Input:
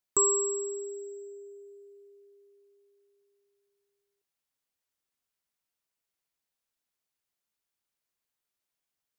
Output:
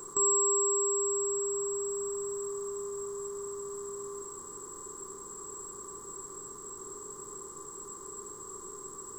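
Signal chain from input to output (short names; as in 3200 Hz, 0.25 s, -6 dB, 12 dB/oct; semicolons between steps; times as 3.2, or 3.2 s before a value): per-bin compression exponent 0.2; shoebox room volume 320 m³, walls mixed, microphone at 0.82 m; gain -6 dB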